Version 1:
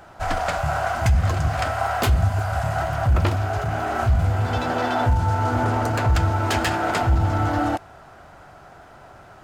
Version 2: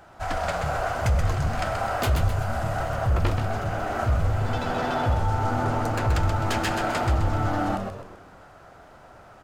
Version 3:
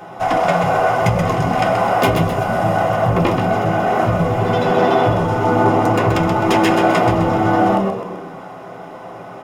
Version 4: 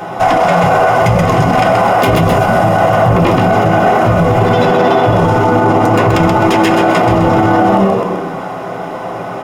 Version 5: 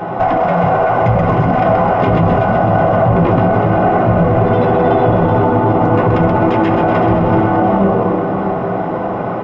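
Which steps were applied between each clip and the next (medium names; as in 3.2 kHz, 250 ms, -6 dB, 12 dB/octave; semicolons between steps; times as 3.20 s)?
frequency-shifting echo 129 ms, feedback 45%, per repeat -98 Hz, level -5.5 dB; trim -4.5 dB
reverberation RT60 0.35 s, pre-delay 3 ms, DRR -1.5 dB; in parallel at -2.5 dB: compression, threshold -28 dBFS, peak gain reduction 14.5 dB; on the sum: peaking EQ 1.6 kHz -12.5 dB 0.85 oct; trim +4.5 dB
loudness maximiser +12.5 dB; trim -1 dB
compression 2:1, threshold -16 dBFS, peak gain reduction 6 dB; tape spacing loss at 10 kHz 38 dB; on a send: two-band feedback delay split 530 Hz, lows 625 ms, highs 377 ms, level -8 dB; on the sum: trim +4.5 dB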